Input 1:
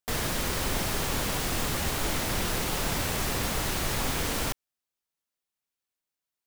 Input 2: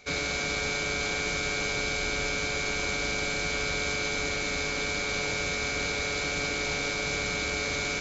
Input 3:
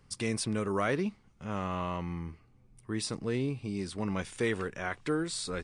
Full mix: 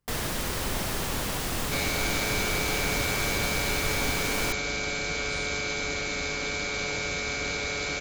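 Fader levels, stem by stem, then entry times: −1.0, −0.5, −17.0 decibels; 0.00, 1.65, 0.00 seconds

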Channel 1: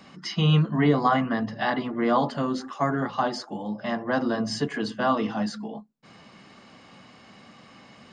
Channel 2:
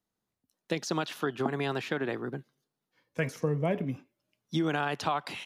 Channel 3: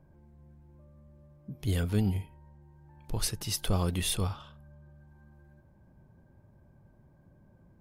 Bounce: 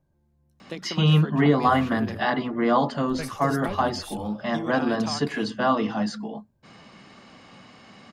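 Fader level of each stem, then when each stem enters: +1.5, −4.5, −10.5 decibels; 0.60, 0.00, 0.00 seconds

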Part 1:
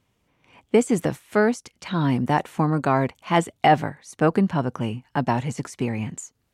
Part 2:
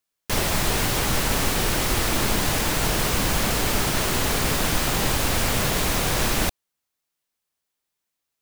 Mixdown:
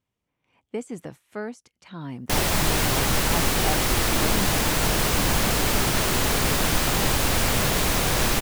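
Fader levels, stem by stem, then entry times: −13.5, +0.5 decibels; 0.00, 2.00 seconds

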